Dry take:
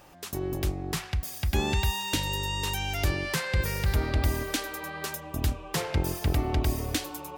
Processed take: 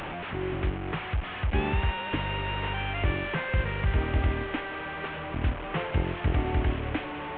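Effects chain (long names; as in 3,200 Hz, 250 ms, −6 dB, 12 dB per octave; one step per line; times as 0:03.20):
linear delta modulator 16 kbit/s, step −29.5 dBFS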